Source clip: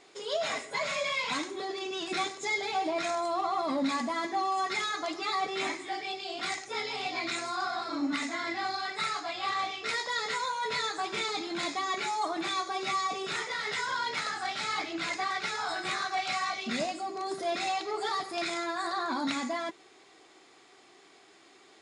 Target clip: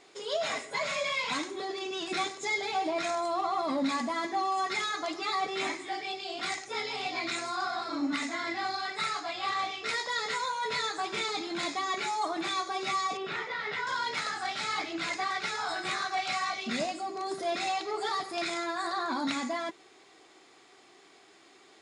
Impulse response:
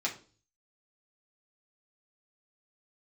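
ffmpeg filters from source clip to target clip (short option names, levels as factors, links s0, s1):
-filter_complex "[0:a]asettb=1/sr,asplit=3[s0][s1][s2];[s0]atrim=end=13.174[s3];[s1]atrim=start=13.17:end=13.87,asetpts=PTS-STARTPTS,afade=t=in:d=0.004:c=qsin,afade=t=out:st=0.696:d=0.004:c=qsin,lowpass=3000[s4];[s2]atrim=start=13.866[s5];[s3][s4]acrossfade=d=0.004:c1=hsin:c2=qsin[s6];[s6][s5]acrossfade=d=0.004:c1=qsin:c2=hsin"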